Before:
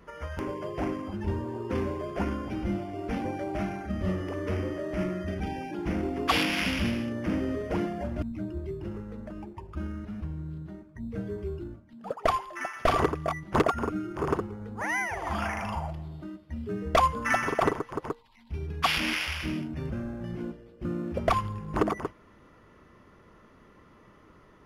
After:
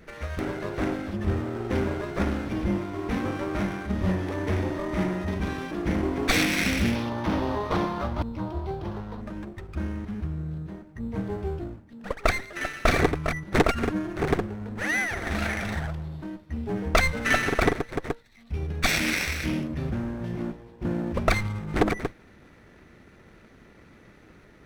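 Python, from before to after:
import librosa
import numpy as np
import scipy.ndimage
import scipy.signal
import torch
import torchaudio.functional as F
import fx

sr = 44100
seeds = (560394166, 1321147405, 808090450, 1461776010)

y = fx.lower_of_two(x, sr, delay_ms=0.5)
y = fx.graphic_eq(y, sr, hz=(250, 1000, 2000, 4000, 8000), db=(-4, 9, -5, 8, -6), at=(6.95, 9.21))
y = F.gain(torch.from_numpy(y), 4.5).numpy()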